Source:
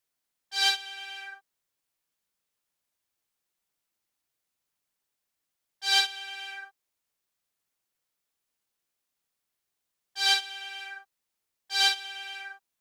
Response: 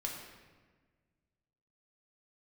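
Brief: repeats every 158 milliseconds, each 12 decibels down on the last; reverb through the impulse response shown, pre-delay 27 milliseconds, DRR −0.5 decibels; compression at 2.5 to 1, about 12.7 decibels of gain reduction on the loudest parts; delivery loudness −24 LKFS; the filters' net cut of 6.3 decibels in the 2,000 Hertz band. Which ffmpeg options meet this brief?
-filter_complex "[0:a]equalizer=frequency=2000:width_type=o:gain=-9,acompressor=threshold=-41dB:ratio=2.5,aecho=1:1:158|316|474:0.251|0.0628|0.0157,asplit=2[link_01][link_02];[1:a]atrim=start_sample=2205,adelay=27[link_03];[link_02][link_03]afir=irnorm=-1:irlink=0,volume=-0.5dB[link_04];[link_01][link_04]amix=inputs=2:normalize=0,volume=13dB"

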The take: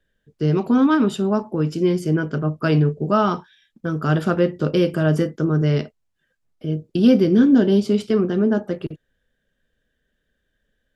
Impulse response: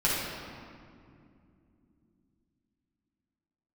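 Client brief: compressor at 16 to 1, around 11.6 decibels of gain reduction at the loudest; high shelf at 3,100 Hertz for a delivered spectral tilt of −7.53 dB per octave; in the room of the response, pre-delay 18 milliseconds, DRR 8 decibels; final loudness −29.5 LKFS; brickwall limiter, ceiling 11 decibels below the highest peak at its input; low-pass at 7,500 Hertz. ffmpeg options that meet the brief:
-filter_complex "[0:a]lowpass=7500,highshelf=frequency=3100:gain=-3.5,acompressor=threshold=-21dB:ratio=16,alimiter=limit=-23dB:level=0:latency=1,asplit=2[link_01][link_02];[1:a]atrim=start_sample=2205,adelay=18[link_03];[link_02][link_03]afir=irnorm=-1:irlink=0,volume=-20.5dB[link_04];[link_01][link_04]amix=inputs=2:normalize=0,volume=1.5dB"

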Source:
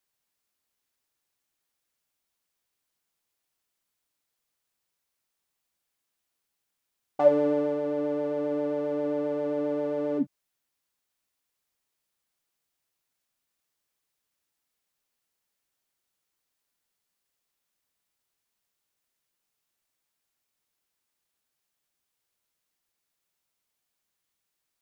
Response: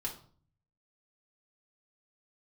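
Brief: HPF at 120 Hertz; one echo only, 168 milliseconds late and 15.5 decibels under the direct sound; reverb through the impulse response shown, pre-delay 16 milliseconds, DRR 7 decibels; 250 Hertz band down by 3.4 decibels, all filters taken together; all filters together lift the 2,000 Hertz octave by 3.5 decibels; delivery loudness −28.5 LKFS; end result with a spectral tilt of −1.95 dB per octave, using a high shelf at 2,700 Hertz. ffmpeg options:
-filter_complex "[0:a]highpass=120,equalizer=frequency=250:width_type=o:gain=-4,equalizer=frequency=2000:width_type=o:gain=8,highshelf=frequency=2700:gain=-8.5,aecho=1:1:168:0.168,asplit=2[link_01][link_02];[1:a]atrim=start_sample=2205,adelay=16[link_03];[link_02][link_03]afir=irnorm=-1:irlink=0,volume=-8dB[link_04];[link_01][link_04]amix=inputs=2:normalize=0"

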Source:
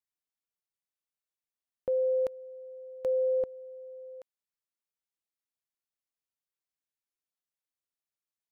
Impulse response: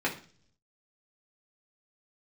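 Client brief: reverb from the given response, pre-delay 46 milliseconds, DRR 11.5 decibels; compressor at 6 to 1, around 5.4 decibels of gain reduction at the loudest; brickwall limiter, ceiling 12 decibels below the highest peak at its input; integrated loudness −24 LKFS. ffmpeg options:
-filter_complex "[0:a]acompressor=threshold=-31dB:ratio=6,alimiter=level_in=11.5dB:limit=-24dB:level=0:latency=1,volume=-11.5dB,asplit=2[link_01][link_02];[1:a]atrim=start_sample=2205,adelay=46[link_03];[link_02][link_03]afir=irnorm=-1:irlink=0,volume=-21dB[link_04];[link_01][link_04]amix=inputs=2:normalize=0,volume=16dB"

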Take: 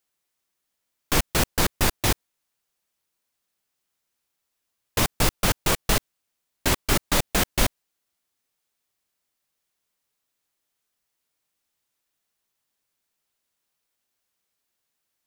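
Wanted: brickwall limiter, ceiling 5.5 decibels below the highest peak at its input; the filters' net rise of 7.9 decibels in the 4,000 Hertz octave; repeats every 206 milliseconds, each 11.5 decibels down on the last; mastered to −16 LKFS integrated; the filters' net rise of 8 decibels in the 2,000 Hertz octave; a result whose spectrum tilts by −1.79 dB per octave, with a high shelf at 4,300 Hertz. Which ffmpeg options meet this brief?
ffmpeg -i in.wav -af "equalizer=frequency=2000:width_type=o:gain=7.5,equalizer=frequency=4000:width_type=o:gain=4,highshelf=frequency=4300:gain=6.5,alimiter=limit=-8dB:level=0:latency=1,aecho=1:1:206|412|618:0.266|0.0718|0.0194,volume=5dB" out.wav

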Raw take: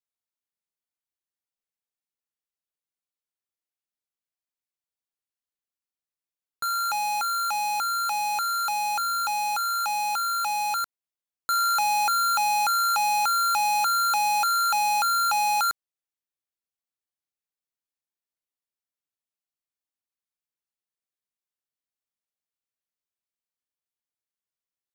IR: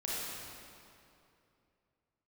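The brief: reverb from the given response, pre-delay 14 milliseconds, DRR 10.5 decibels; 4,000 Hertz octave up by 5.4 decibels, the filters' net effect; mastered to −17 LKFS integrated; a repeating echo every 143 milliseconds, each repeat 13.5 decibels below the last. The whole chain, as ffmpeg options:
-filter_complex "[0:a]equalizer=frequency=4000:width_type=o:gain=5.5,aecho=1:1:143|286:0.211|0.0444,asplit=2[link_01][link_02];[1:a]atrim=start_sample=2205,adelay=14[link_03];[link_02][link_03]afir=irnorm=-1:irlink=0,volume=-15dB[link_04];[link_01][link_04]amix=inputs=2:normalize=0,volume=4.5dB"

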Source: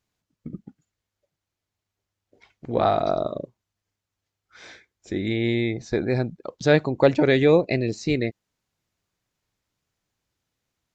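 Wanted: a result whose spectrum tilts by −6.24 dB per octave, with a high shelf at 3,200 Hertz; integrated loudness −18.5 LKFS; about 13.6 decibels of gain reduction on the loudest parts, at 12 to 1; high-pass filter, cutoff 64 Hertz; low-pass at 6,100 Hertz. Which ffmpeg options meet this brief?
ffmpeg -i in.wav -af "highpass=64,lowpass=6100,highshelf=frequency=3200:gain=-5.5,acompressor=threshold=-25dB:ratio=12,volume=14dB" out.wav

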